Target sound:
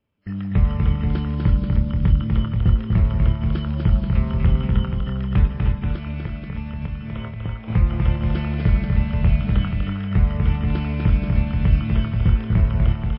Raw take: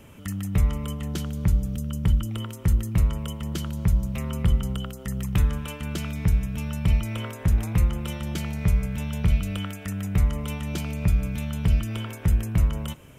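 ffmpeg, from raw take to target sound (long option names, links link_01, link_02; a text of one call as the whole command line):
ffmpeg -i in.wav -filter_complex "[0:a]acrossover=split=2600[link_01][link_02];[link_02]acompressor=threshold=-55dB:ratio=4:attack=1:release=60[link_03];[link_01][link_03]amix=inputs=2:normalize=0,agate=range=-31dB:threshold=-31dB:ratio=16:detection=peak,asettb=1/sr,asplit=3[link_04][link_05][link_06];[link_04]atrim=end=5.474[link_07];[link_05]atrim=start=5.47:end=7.68,asetpts=PTS-STARTPTS,afade=type=in:duration=0.004:curve=qsin,afade=type=out:start_time=2.206:duration=0.004:curve=qsin,acompressor=threshold=-30dB:ratio=12[link_08];[link_06]atrim=start=7.676[link_09];[link_07][link_08]acrossfade=duration=0.004:curve1=hsin:curve2=qsin[link_10];[link_10][link_09]acrossfade=duration=0.004:curve1=qsin:curve2=hsin,asplit=2[link_11][link_12];[link_12]adelay=26,volume=-11dB[link_13];[link_11][link_13]amix=inputs=2:normalize=0,aecho=1:1:246|311|320|482:0.631|0.355|0.282|0.447,volume=3.5dB" -ar 12000 -c:a libmp3lame -b:a 24k out.mp3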